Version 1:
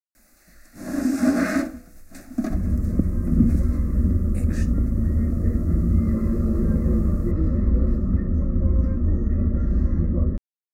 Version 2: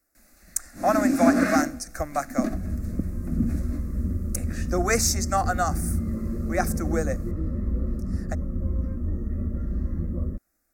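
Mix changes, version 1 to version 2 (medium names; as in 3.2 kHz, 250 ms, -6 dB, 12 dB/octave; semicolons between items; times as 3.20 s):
speech: unmuted; second sound -7.0 dB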